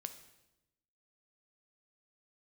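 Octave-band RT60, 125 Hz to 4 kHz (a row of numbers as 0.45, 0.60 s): 1.2, 1.2, 1.0, 0.85, 0.85, 0.85 s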